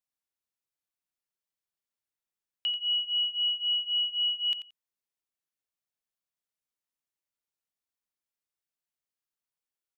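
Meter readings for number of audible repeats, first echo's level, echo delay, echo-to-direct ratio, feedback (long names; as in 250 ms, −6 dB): 2, −11.0 dB, 88 ms, −11.0 dB, 16%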